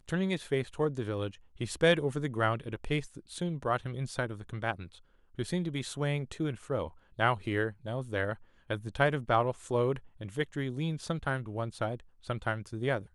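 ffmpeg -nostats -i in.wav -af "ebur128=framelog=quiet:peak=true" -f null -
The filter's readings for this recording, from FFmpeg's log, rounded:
Integrated loudness:
  I:         -33.0 LUFS
  Threshold: -43.1 LUFS
Loudness range:
  LRA:         4.0 LU
  Threshold: -53.1 LUFS
  LRA low:   -35.5 LUFS
  LRA high:  -31.5 LUFS
True peak:
  Peak:      -10.9 dBFS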